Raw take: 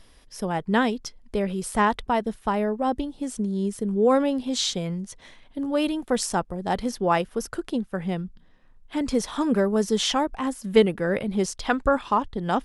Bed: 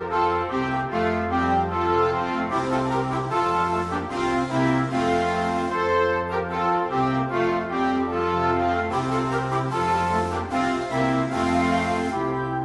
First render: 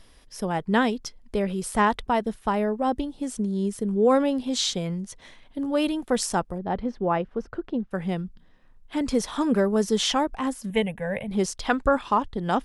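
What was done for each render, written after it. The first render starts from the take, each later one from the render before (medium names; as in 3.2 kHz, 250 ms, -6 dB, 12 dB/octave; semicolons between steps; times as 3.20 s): 6.58–7.91 s: tape spacing loss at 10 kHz 35 dB; 10.70–11.31 s: static phaser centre 1.3 kHz, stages 6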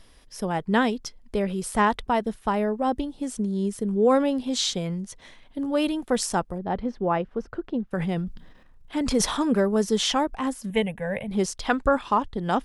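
7.93–9.41 s: transient shaper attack 0 dB, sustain +9 dB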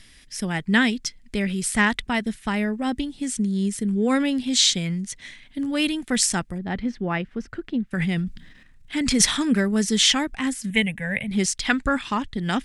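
graphic EQ 125/250/500/1000/2000/4000/8000 Hz +4/+4/-7/-7/+11/+4/+9 dB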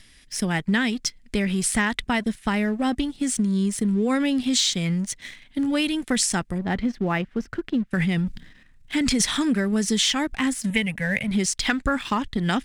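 waveshaping leveller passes 1; compression, threshold -19 dBFS, peak gain reduction 9 dB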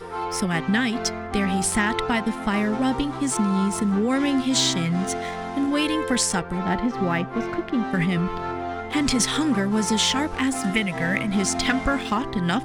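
add bed -7.5 dB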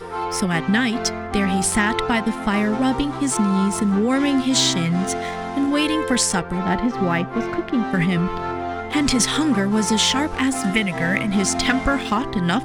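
trim +3 dB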